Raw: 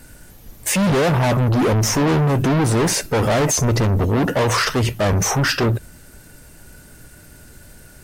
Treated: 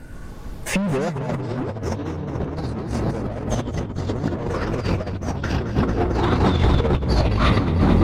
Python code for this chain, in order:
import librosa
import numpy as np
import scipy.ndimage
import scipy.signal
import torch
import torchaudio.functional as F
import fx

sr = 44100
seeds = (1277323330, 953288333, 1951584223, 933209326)

y = fx.echo_pitch(x, sr, ms=120, semitones=-5, count=3, db_per_echo=-3.0)
y = fx.lowpass(y, sr, hz=1100.0, slope=6)
y = fx.echo_feedback(y, sr, ms=220, feedback_pct=59, wet_db=-6)
y = fx.over_compress(y, sr, threshold_db=-20.0, ratio=-0.5)